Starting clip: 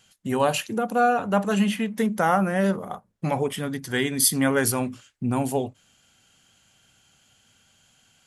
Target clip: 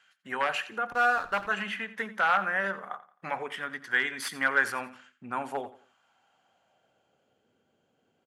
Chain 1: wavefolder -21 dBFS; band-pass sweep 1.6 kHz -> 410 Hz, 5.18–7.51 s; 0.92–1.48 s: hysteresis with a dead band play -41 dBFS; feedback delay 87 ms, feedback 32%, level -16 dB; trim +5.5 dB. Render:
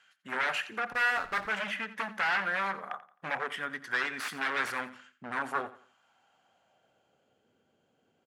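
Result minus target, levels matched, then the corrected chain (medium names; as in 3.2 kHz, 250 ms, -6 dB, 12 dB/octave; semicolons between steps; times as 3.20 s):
wavefolder: distortion +15 dB
wavefolder -13.5 dBFS; band-pass sweep 1.6 kHz -> 410 Hz, 5.18–7.51 s; 0.92–1.48 s: hysteresis with a dead band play -41 dBFS; feedback delay 87 ms, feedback 32%, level -16 dB; trim +5.5 dB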